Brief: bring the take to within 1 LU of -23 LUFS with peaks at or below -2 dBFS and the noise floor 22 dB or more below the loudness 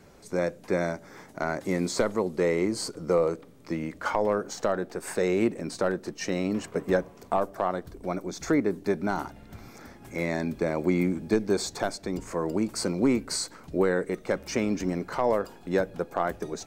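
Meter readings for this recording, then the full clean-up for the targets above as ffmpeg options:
loudness -28.5 LUFS; peak -11.5 dBFS; loudness target -23.0 LUFS
-> -af "volume=5.5dB"

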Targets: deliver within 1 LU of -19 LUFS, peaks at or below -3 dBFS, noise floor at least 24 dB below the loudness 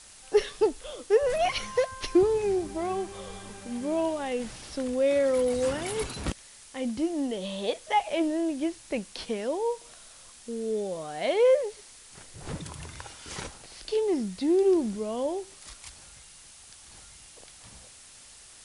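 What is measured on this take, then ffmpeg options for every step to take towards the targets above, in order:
noise floor -51 dBFS; noise floor target -53 dBFS; loudness -28.5 LUFS; peak -11.5 dBFS; loudness target -19.0 LUFS
-> -af "afftdn=nr=6:nf=-51"
-af "volume=9.5dB,alimiter=limit=-3dB:level=0:latency=1"

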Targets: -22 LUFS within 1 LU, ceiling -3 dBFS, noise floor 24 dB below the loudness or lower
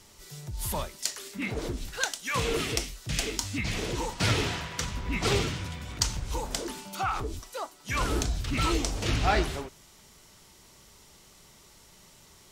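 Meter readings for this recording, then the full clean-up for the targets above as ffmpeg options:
loudness -30.5 LUFS; peak -7.5 dBFS; loudness target -22.0 LUFS
-> -af "volume=8.5dB,alimiter=limit=-3dB:level=0:latency=1"

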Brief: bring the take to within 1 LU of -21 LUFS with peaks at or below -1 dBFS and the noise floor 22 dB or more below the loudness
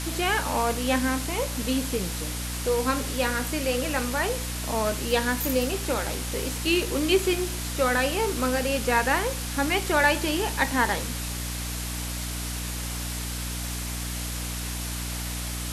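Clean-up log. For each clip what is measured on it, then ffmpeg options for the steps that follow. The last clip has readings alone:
hum 60 Hz; harmonics up to 300 Hz; hum level -31 dBFS; noise floor -32 dBFS; noise floor target -49 dBFS; loudness -26.5 LUFS; peak -8.5 dBFS; loudness target -21.0 LUFS
-> -af "bandreject=f=60:t=h:w=4,bandreject=f=120:t=h:w=4,bandreject=f=180:t=h:w=4,bandreject=f=240:t=h:w=4,bandreject=f=300:t=h:w=4"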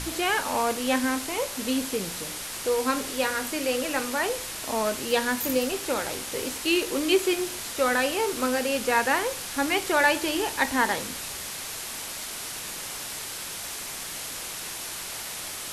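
hum none; noise floor -36 dBFS; noise floor target -49 dBFS
-> -af "afftdn=nr=13:nf=-36"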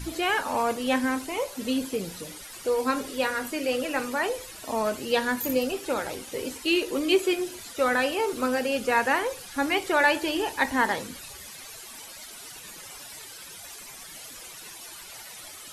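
noise floor -44 dBFS; noise floor target -49 dBFS
-> -af "afftdn=nr=6:nf=-44"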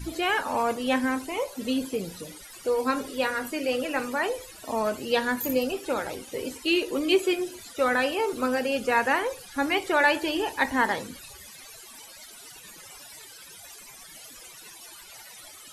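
noise floor -47 dBFS; noise floor target -49 dBFS
-> -af "afftdn=nr=6:nf=-47"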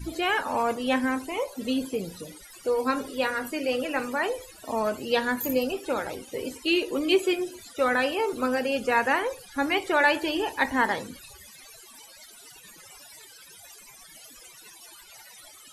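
noise floor -50 dBFS; loudness -26.5 LUFS; peak -8.5 dBFS; loudness target -21.0 LUFS
-> -af "volume=5.5dB"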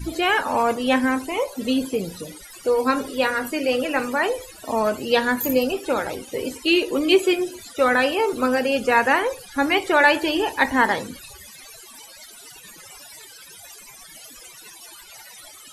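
loudness -21.0 LUFS; peak -3.0 dBFS; noise floor -44 dBFS

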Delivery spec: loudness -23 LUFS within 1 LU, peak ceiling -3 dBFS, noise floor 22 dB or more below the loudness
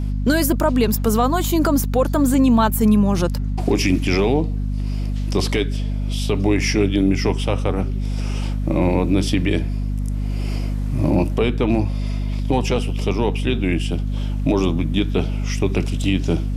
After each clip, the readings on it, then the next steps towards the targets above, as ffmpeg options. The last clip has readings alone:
hum 50 Hz; harmonics up to 250 Hz; hum level -20 dBFS; loudness -20.0 LUFS; peak -6.0 dBFS; loudness target -23.0 LUFS
-> -af "bandreject=f=50:t=h:w=6,bandreject=f=100:t=h:w=6,bandreject=f=150:t=h:w=6,bandreject=f=200:t=h:w=6,bandreject=f=250:t=h:w=6"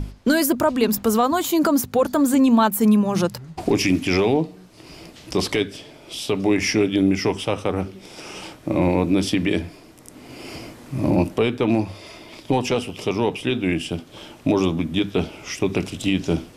hum none; loudness -21.0 LUFS; peak -6.5 dBFS; loudness target -23.0 LUFS
-> -af "volume=-2dB"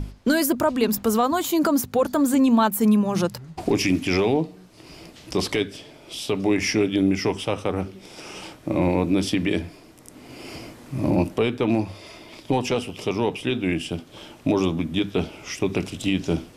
loudness -23.0 LUFS; peak -8.5 dBFS; noise floor -48 dBFS

